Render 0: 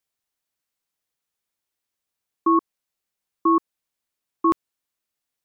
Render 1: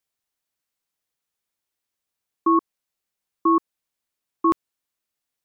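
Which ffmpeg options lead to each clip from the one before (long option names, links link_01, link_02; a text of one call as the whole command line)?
ffmpeg -i in.wav -af anull out.wav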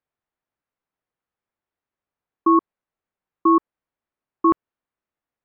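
ffmpeg -i in.wav -af "lowpass=1600,volume=3dB" out.wav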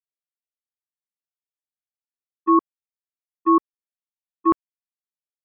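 ffmpeg -i in.wav -af "agate=range=-31dB:threshold=-15dB:ratio=16:detection=peak" out.wav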